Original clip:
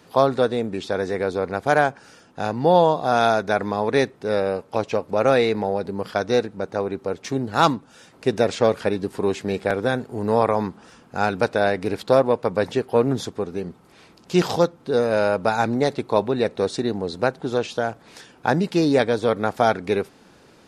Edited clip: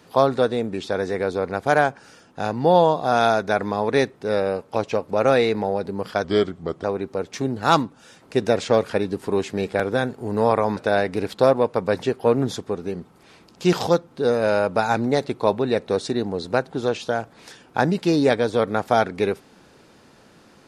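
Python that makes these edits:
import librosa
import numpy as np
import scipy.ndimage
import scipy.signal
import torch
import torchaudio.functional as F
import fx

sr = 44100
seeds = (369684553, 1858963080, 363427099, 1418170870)

y = fx.edit(x, sr, fx.speed_span(start_s=6.24, length_s=0.51, speed=0.85),
    fx.cut(start_s=10.68, length_s=0.78), tone=tone)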